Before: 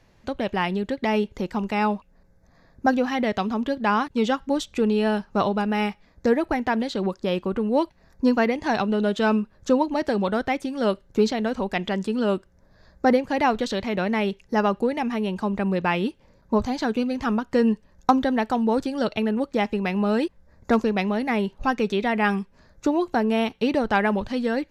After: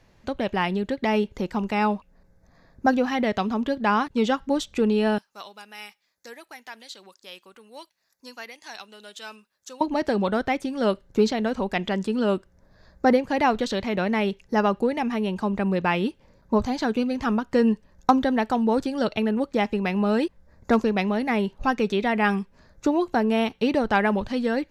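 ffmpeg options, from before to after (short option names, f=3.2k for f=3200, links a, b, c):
-filter_complex "[0:a]asettb=1/sr,asplit=3[a][b][c];[a]atrim=end=5.184[d];[b]atrim=start=5.18:end=9.81,asetpts=PTS-STARTPTS,afade=t=in:d=0.004:c=qsin,afade=t=out:st=4.626:d=0.004:c=qsin,aderivative[e];[c]atrim=start=9.806[f];[d][e]acrossfade=d=0.004:c1=hsin:c2=qsin[g];[g][f]acrossfade=d=0.004:c1=qsin:c2=hsin"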